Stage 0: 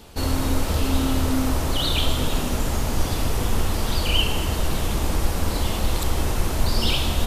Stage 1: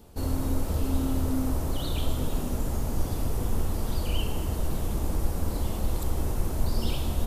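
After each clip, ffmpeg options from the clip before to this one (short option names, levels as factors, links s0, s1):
-af "equalizer=f=2900:t=o:w=3:g=-11,volume=0.596"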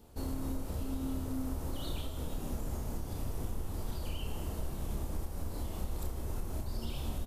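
-filter_complex "[0:a]acompressor=threshold=0.0501:ratio=6,asplit=2[s0][s1];[s1]adelay=30,volume=0.531[s2];[s0][s2]amix=inputs=2:normalize=0,volume=0.473"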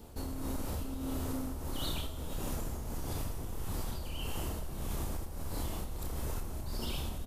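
-filter_complex "[0:a]tremolo=f=1.6:d=0.59,acrossover=split=840|4200[s0][s1][s2];[s0]asoftclip=type=tanh:threshold=0.0106[s3];[s3][s1][s2]amix=inputs=3:normalize=0,volume=2.24"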